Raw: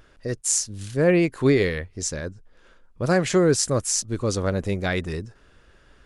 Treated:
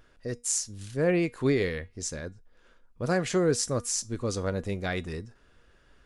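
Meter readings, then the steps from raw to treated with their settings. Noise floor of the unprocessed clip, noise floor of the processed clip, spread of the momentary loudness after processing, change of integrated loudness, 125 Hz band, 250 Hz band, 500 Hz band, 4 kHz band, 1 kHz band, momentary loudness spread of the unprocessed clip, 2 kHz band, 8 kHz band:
-56 dBFS, -61 dBFS, 11 LU, -6.0 dB, -6.5 dB, -6.5 dB, -6.0 dB, -6.0 dB, -5.5 dB, 13 LU, -6.0 dB, -6.0 dB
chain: resonator 240 Hz, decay 0.24 s, harmonics all, mix 50%; gain -1 dB

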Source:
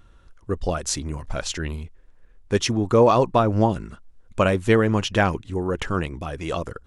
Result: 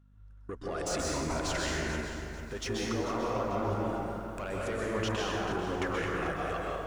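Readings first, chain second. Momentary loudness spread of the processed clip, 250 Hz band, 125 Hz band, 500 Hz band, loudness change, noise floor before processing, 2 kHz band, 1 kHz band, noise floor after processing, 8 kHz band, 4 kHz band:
7 LU, -11.0 dB, -12.5 dB, -11.5 dB, -11.0 dB, -52 dBFS, -6.5 dB, -9.5 dB, -52 dBFS, -7.5 dB, -7.5 dB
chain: ending faded out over 1.96 s; gate -41 dBFS, range -23 dB; bell 3300 Hz -4.5 dB 0.8 oct; compressor 3:1, threshold -35 dBFS, peak gain reduction 17.5 dB; overdrive pedal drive 19 dB, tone 4600 Hz, clips at -16 dBFS; hum 50 Hz, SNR 22 dB; level quantiser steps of 12 dB; plate-style reverb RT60 2.3 s, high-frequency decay 0.5×, pre-delay 0.115 s, DRR -4.5 dB; lo-fi delay 0.441 s, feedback 35%, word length 9-bit, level -11 dB; gain -1.5 dB

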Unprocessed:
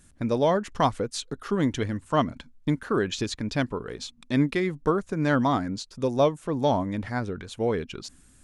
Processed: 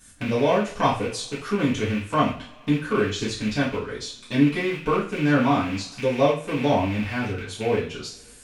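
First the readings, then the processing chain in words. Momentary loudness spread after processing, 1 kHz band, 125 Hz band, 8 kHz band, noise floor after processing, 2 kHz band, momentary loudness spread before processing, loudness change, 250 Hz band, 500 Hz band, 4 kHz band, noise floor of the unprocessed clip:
9 LU, +2.5 dB, +2.0 dB, +2.5 dB, -48 dBFS, +5.5 dB, 10 LU, +3.0 dB, +3.5 dB, +2.0 dB, +3.5 dB, -56 dBFS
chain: rattling part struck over -35 dBFS, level -24 dBFS; two-slope reverb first 0.38 s, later 1.8 s, from -26 dB, DRR -8.5 dB; mismatched tape noise reduction encoder only; gain -7 dB

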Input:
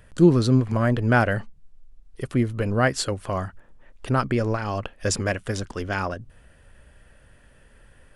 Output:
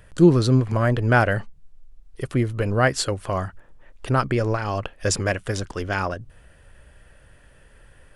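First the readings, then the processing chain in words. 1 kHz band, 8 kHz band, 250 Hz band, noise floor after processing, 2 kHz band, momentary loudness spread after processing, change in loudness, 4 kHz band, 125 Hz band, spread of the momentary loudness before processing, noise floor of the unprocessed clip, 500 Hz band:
+2.0 dB, +2.0 dB, 0.0 dB, -53 dBFS, +2.0 dB, 11 LU, +1.5 dB, +2.0 dB, +1.5 dB, 11 LU, -55 dBFS, +2.0 dB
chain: bell 230 Hz -5.5 dB 0.35 oct; gain +2 dB

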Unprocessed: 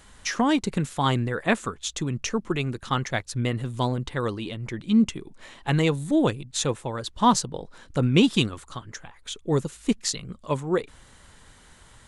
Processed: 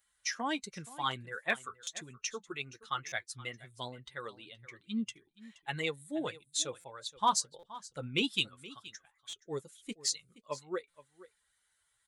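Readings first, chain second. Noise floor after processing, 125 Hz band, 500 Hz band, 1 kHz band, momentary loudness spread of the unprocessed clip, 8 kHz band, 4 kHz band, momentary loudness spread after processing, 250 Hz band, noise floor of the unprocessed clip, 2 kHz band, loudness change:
-77 dBFS, -21.5 dB, -13.5 dB, -9.0 dB, 14 LU, -5.5 dB, -6.0 dB, 15 LU, -17.5 dB, -53 dBFS, -6.5 dB, -11.0 dB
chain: per-bin expansion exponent 1.5; HPF 300 Hz 6 dB/oct; tilt shelf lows -5 dB, about 790 Hz; hard clip -8.5 dBFS, distortion -34 dB; flange 1.4 Hz, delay 4.8 ms, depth 3.6 ms, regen -46%; echo 0.473 s -18.5 dB; stuck buffer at 1.83/3.08/6.8/7.59/9.29/10.9, samples 256, times 6; gain -3.5 dB

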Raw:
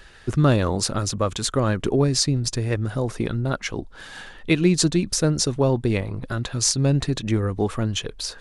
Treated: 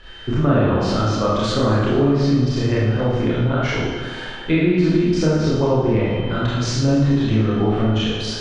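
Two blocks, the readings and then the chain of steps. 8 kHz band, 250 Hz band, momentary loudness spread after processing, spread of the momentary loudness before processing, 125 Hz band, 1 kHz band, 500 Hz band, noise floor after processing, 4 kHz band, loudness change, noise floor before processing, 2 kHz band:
-10.5 dB, +5.5 dB, 5 LU, 10 LU, +4.0 dB, +5.5 dB, +5.0 dB, -31 dBFS, -0.5 dB, +4.0 dB, -44 dBFS, +4.5 dB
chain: high shelf 6500 Hz -8 dB; whine 3100 Hz -50 dBFS; treble ducked by the level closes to 2500 Hz, closed at -17.5 dBFS; Schroeder reverb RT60 1.1 s, combs from 25 ms, DRR -8.5 dB; compressor 2:1, threshold -16 dBFS, peak gain reduction 6.5 dB; air absorption 77 m; tape echo 0.224 s, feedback 72%, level -15 dB, low-pass 5100 Hz

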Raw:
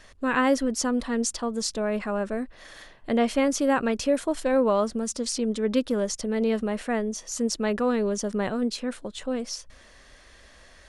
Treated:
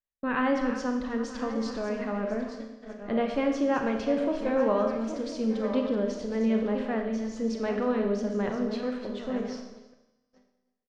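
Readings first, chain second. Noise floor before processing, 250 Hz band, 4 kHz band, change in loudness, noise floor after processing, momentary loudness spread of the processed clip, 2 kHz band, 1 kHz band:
-53 dBFS, -2.0 dB, -9.5 dB, -2.5 dB, -77 dBFS, 7 LU, -4.0 dB, -3.0 dB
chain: regenerating reverse delay 0.523 s, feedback 54%, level -9 dB; gate -34 dBFS, range -44 dB; air absorption 220 m; resonator 69 Hz, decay 1.5 s, harmonics all, mix 40%; echo 0.312 s -23 dB; Schroeder reverb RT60 0.86 s, combs from 28 ms, DRR 4 dB

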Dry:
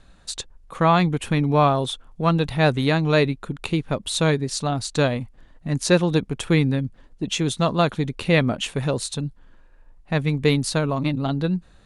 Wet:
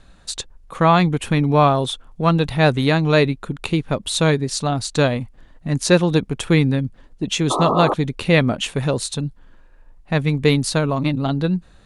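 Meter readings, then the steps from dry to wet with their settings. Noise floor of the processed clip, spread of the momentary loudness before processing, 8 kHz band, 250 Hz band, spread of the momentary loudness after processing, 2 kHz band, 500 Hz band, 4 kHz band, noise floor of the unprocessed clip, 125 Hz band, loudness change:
-48 dBFS, 12 LU, +3.0 dB, +3.0 dB, 12 LU, +3.0 dB, +3.0 dB, +3.0 dB, -51 dBFS, +3.0 dB, +3.0 dB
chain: painted sound noise, 7.5–7.94, 250–1300 Hz -23 dBFS; gain +3 dB

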